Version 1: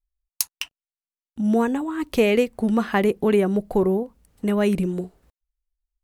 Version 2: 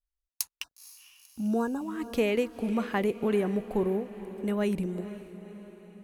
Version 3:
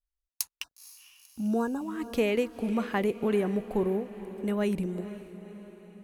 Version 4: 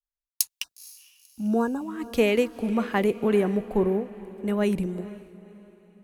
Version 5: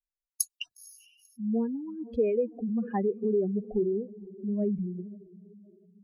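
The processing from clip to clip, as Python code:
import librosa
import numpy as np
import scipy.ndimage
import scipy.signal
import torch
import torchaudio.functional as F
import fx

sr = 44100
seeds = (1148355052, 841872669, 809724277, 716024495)

y1 = fx.spec_erase(x, sr, start_s=0.63, length_s=1.22, low_hz=1700.0, high_hz=3600.0)
y1 = fx.echo_diffused(y1, sr, ms=486, feedback_pct=55, wet_db=-14.0)
y1 = y1 * 10.0 ** (-8.0 / 20.0)
y2 = y1
y3 = fx.band_widen(y2, sr, depth_pct=40)
y3 = y3 * 10.0 ** (4.0 / 20.0)
y4 = fx.spec_expand(y3, sr, power=2.9)
y4 = y4 * 10.0 ** (-4.0 / 20.0)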